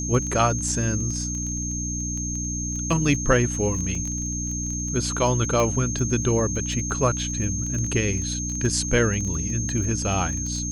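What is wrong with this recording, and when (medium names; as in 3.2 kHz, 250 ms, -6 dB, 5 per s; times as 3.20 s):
crackle 15 per s -28 dBFS
hum 60 Hz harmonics 5 -30 dBFS
whine 6.4 kHz -29 dBFS
3.95 s: dropout 3.4 ms
5.60 s: pop -11 dBFS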